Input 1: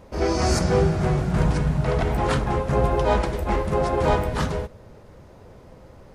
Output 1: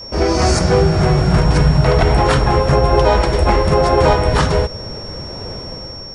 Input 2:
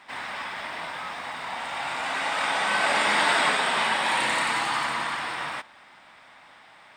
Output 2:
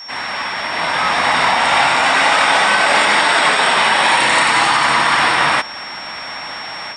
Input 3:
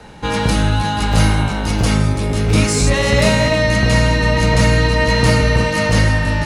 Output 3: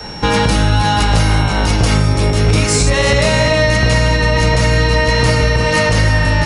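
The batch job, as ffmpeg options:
-filter_complex "[0:a]dynaudnorm=f=690:g=3:m=5.62,aresample=22050,aresample=44100,asplit=2[s0][s1];[s1]acompressor=threshold=0.0891:ratio=6,volume=1.12[s2];[s0][s2]amix=inputs=2:normalize=0,adynamicequalizer=threshold=0.0282:dfrequency=220:dqfactor=2.5:tfrequency=220:tqfactor=2.5:attack=5:release=100:ratio=0.375:range=3:mode=cutabove:tftype=bell,alimiter=limit=0.531:level=0:latency=1:release=213,aeval=exprs='val(0)+0.0224*sin(2*PI*5500*n/s)':c=same,volume=1.33"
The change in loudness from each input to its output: +8.5 LU, +12.5 LU, +2.0 LU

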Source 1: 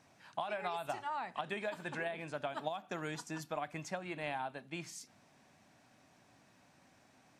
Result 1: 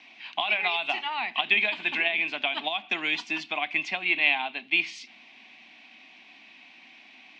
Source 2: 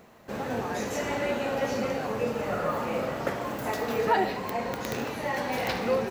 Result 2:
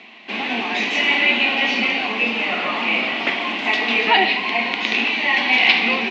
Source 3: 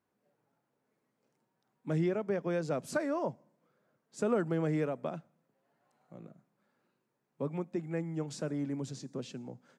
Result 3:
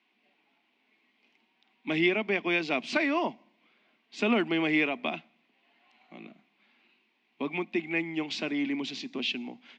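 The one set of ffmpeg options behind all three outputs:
-af "aexciter=amount=14.5:drive=8.3:freq=2000,highpass=f=220:w=0.5412,highpass=f=220:w=1.3066,equalizer=f=230:t=q:w=4:g=7,equalizer=f=330:t=q:w=4:g=4,equalizer=f=520:t=q:w=4:g=-10,equalizer=f=740:t=q:w=4:g=6,equalizer=f=1100:t=q:w=4:g=9,equalizer=f=1700:t=q:w=4:g=-9,lowpass=f=2600:w=0.5412,lowpass=f=2600:w=1.3066,volume=1.41"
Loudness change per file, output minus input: +15.0 LU, +12.0 LU, +5.5 LU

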